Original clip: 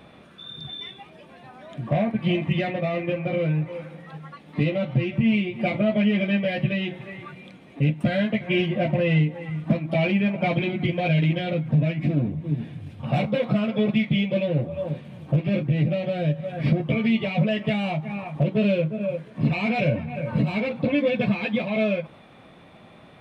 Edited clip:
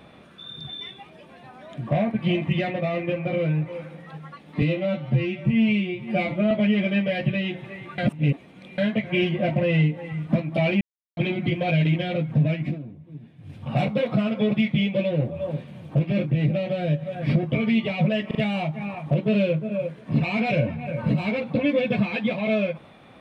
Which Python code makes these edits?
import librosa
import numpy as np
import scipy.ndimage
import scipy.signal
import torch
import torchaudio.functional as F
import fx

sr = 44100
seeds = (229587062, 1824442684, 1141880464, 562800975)

y = fx.edit(x, sr, fx.stretch_span(start_s=4.62, length_s=1.26, factor=1.5),
    fx.reverse_span(start_s=7.35, length_s=0.8),
    fx.silence(start_s=10.18, length_s=0.36),
    fx.fade_down_up(start_s=11.99, length_s=0.93, db=-14.5, fade_s=0.18),
    fx.stutter(start_s=17.64, slice_s=0.04, count=3), tone=tone)